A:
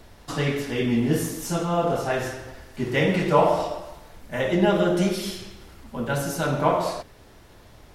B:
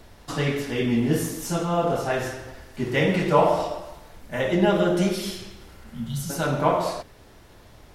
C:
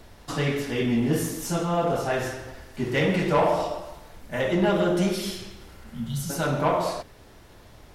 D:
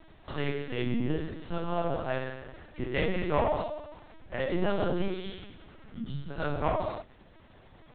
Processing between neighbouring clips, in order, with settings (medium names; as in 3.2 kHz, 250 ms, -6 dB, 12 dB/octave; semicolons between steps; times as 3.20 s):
spectral replace 5.77–6.27 s, 240–2900 Hz before
saturation -14 dBFS, distortion -16 dB
LPC vocoder at 8 kHz pitch kept; trim -5.5 dB